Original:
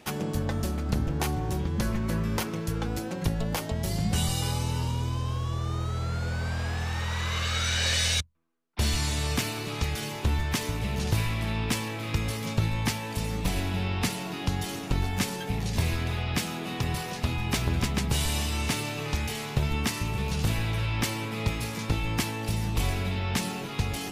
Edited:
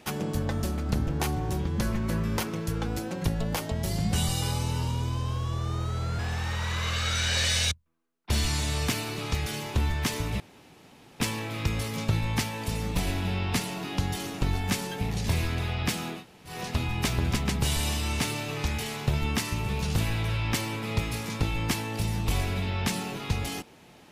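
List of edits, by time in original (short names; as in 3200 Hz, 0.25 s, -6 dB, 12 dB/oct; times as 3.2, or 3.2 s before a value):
6.19–6.68 cut
10.89–11.69 room tone
16.67–17.01 room tone, crossfade 0.16 s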